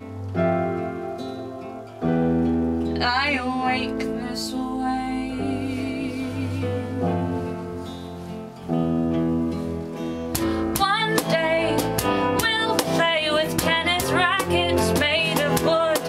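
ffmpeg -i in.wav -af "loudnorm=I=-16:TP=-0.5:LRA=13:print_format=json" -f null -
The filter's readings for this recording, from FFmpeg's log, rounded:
"input_i" : "-22.3",
"input_tp" : "-5.9",
"input_lra" : "6.7",
"input_thresh" : "-32.6",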